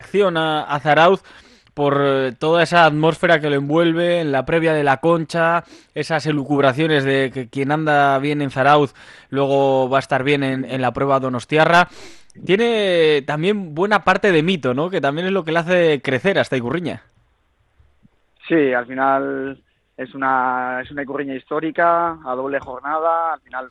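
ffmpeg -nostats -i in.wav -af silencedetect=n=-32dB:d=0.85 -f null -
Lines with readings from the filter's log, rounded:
silence_start: 16.97
silence_end: 18.45 | silence_duration: 1.47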